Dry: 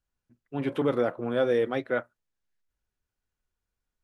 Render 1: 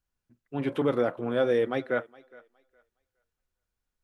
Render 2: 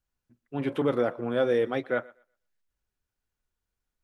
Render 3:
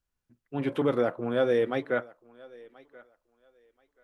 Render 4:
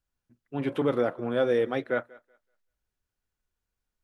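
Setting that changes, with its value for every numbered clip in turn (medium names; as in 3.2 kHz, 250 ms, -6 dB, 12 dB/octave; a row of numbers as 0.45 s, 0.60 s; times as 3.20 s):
thinning echo, time: 414 ms, 122 ms, 1031 ms, 189 ms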